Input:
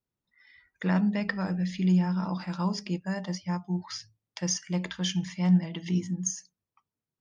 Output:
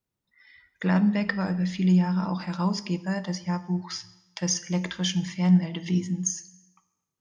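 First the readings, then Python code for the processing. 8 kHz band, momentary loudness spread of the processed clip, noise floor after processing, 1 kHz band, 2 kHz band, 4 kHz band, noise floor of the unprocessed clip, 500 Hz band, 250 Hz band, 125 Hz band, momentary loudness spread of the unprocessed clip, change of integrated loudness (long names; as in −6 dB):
can't be measured, 9 LU, −85 dBFS, +3.0 dB, +3.0 dB, +3.0 dB, below −85 dBFS, +3.0 dB, +3.0 dB, +3.0 dB, 9 LU, +3.0 dB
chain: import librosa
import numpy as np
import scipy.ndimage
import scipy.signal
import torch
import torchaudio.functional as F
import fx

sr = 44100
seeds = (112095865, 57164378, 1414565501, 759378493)

y = fx.rev_plate(x, sr, seeds[0], rt60_s=1.0, hf_ratio=0.95, predelay_ms=0, drr_db=14.5)
y = y * librosa.db_to_amplitude(3.0)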